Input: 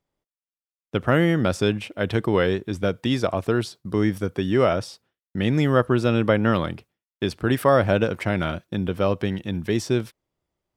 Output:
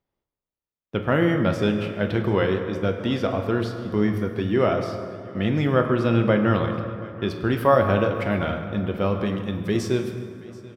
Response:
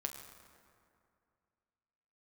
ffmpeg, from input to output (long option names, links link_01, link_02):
-filter_complex "[0:a]asetnsamples=nb_out_samples=441:pad=0,asendcmd='9.26 equalizer g -2',equalizer=frequency=8500:width=1:gain=-11,aecho=1:1:732|1464|2196:0.0944|0.033|0.0116[link_01];[1:a]atrim=start_sample=2205[link_02];[link_01][link_02]afir=irnorm=-1:irlink=0"